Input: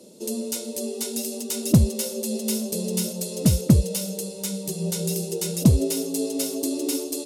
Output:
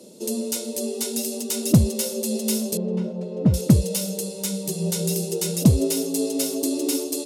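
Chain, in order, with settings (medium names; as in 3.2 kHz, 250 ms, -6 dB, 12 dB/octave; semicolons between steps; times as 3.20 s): 2.77–3.54 s: low-pass 1.3 kHz 12 dB/octave; in parallel at -10 dB: saturation -17 dBFS, distortion -9 dB; on the sum: high-pass 73 Hz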